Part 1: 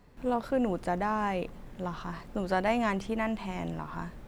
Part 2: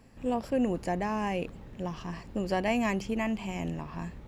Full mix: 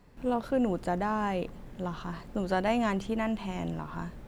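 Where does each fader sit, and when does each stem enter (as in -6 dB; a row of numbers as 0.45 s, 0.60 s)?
-0.5 dB, -12.5 dB; 0.00 s, 0.00 s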